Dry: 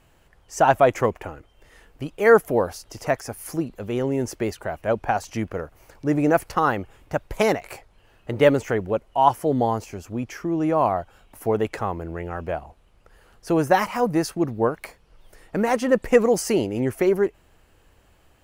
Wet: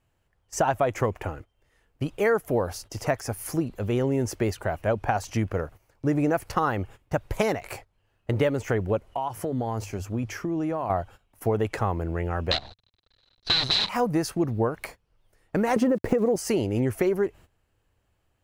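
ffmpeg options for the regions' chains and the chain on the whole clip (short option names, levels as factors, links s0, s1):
-filter_complex "[0:a]asettb=1/sr,asplit=3[s0][s1][s2];[s0]atrim=end=9.094[s3];[s1]atrim=start=9.09:end=10.9,asetpts=PTS-STARTPTS,afade=t=in:d=0.004:c=qsin,afade=t=out:st=1.806:d=0.004:c=qsin,bandreject=f=50:t=h:w=6,bandreject=f=100:t=h:w=6,bandreject=f=150:t=h:w=6,acompressor=threshold=0.0562:ratio=16:attack=3.2:release=140:knee=1:detection=peak[s4];[s2]atrim=start=10.896[s5];[s3][s4]acrossfade=d=0.004:c1=hsin:c2=qsin[s6];[s6][s5]acrossfade=d=0.004:c1=qsin:c2=hsin,asettb=1/sr,asplit=3[s7][s8][s9];[s7]atrim=end=12.514[s10];[s8]atrim=start=12.51:end=13.89,asetpts=PTS-STARTPTS,afade=t=in:d=0.004:c=qsin,afade=t=out:st=1.376:d=0.004:c=qsin,aeval=exprs='(mod(10.6*val(0)+1,2)-1)/10.6':c=same,acrusher=bits=6:dc=4:mix=0:aa=0.000001,lowpass=f=4000:t=q:w=16[s11];[s9]atrim=start=13.886[s12];[s10][s11]acrossfade=d=0.004:c1=hsin:c2=qsin[s13];[s13][s12]acrossfade=d=0.004:c1=qsin:c2=hsin,asettb=1/sr,asplit=3[s14][s15][s16];[s14]atrim=end=15.764[s17];[s15]atrim=start=15.76:end=16.36,asetpts=PTS-STARTPTS,afade=t=in:d=0.004:c=qsin,afade=t=out:st=0.596:d=0.004:c=qsin,equalizer=f=330:w=0.34:g=14.5,acompressor=threshold=0.398:ratio=10:attack=3.2:release=140:knee=1:detection=peak,aeval=exprs='val(0)*gte(abs(val(0)),0.0133)':c=same[s18];[s16]atrim=start=16.356[s19];[s17][s18]acrossfade=d=0.004:c1=hsin:c2=qsin[s20];[s20][s19]acrossfade=d=0.004:c1=qsin:c2=hsin,agate=range=0.158:threshold=0.00708:ratio=16:detection=peak,equalizer=f=100:t=o:w=0.77:g=7,acompressor=threshold=0.0891:ratio=6,volume=1.12"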